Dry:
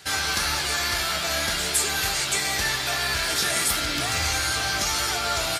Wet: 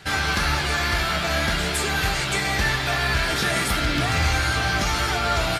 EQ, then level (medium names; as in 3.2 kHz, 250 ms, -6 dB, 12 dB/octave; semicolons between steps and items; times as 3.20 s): tone controls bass +8 dB, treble -11 dB; peaking EQ 91 Hz -4.5 dB 0.56 oct; +4.0 dB